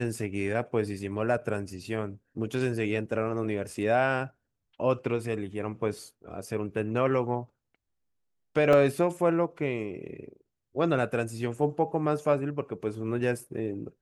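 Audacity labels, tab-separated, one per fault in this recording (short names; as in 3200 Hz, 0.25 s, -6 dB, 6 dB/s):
8.730000	8.730000	gap 2.8 ms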